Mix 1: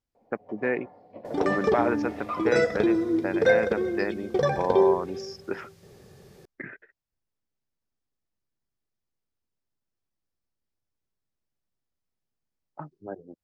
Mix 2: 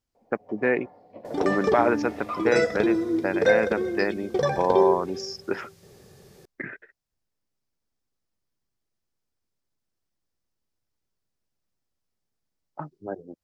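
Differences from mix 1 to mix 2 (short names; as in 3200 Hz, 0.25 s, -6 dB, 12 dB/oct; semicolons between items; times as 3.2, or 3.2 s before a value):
speech +4.0 dB; master: add tone controls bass -1 dB, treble +4 dB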